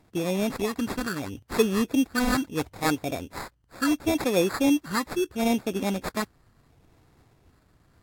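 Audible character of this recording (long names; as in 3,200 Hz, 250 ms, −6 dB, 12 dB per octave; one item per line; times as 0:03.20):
phaser sweep stages 8, 0.74 Hz, lowest notch 600–2,600 Hz
aliases and images of a low sample rate 3,000 Hz, jitter 0%
Ogg Vorbis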